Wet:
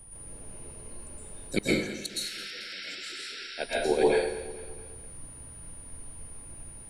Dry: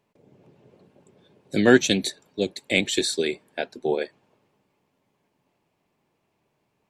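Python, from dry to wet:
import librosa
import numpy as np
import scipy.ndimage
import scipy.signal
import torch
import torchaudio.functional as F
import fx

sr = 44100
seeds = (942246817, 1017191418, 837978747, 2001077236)

p1 = fx.highpass(x, sr, hz=160.0, slope=6)
p2 = fx.high_shelf(p1, sr, hz=4500.0, db=11.0)
p3 = fx.notch(p2, sr, hz=3500.0, q=11.0)
p4 = fx.level_steps(p3, sr, step_db=22)
p5 = p3 + (p4 * librosa.db_to_amplitude(-3.0))
p6 = fx.dmg_noise_colour(p5, sr, seeds[0], colour='brown', level_db=-47.0)
p7 = fx.spec_paint(p6, sr, seeds[1], shape='noise', start_s=2.09, length_s=1.38, low_hz=1300.0, high_hz=5700.0, level_db=-13.0)
p8 = p7 + 10.0 ** (-44.0 / 20.0) * np.sin(2.0 * np.pi * 9500.0 * np.arange(len(p7)) / sr)
p9 = fx.gate_flip(p8, sr, shuts_db=-8.0, range_db=-30)
p10 = p9 + fx.echo_feedback(p9, sr, ms=221, feedback_pct=49, wet_db=-15.5, dry=0)
p11 = fx.rev_plate(p10, sr, seeds[2], rt60_s=0.69, hf_ratio=0.9, predelay_ms=105, drr_db=-6.5)
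y = p11 * librosa.db_to_amplitude(-5.0)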